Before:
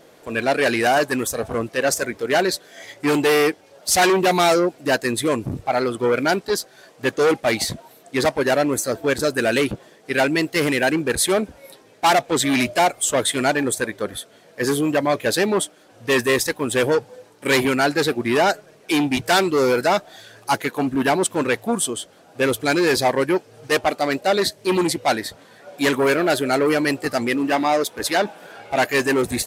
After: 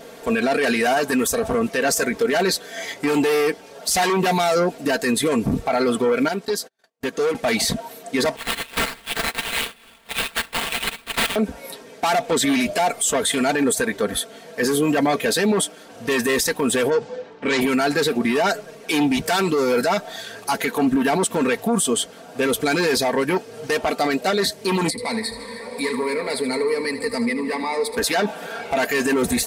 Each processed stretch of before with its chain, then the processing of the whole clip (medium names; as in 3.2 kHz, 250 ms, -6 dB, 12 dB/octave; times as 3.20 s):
6.28–7.35 s: high-pass 92 Hz + gate -43 dBFS, range -44 dB + compression 2.5:1, threshold -35 dBFS
8.36–11.36 s: steep high-pass 3 kHz + sample-rate reducer 6.1 kHz, jitter 20%
16.90–17.61 s: level-controlled noise filter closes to 2.4 kHz, open at -14.5 dBFS + low-pass 7.5 kHz 24 dB/octave
24.90–27.97 s: rippled EQ curve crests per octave 0.94, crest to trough 16 dB + compression 3:1, threshold -36 dBFS + feedback delay 77 ms, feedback 57%, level -12 dB
whole clip: comb 4.4 ms, depth 62%; peak limiter -19 dBFS; trim +7.5 dB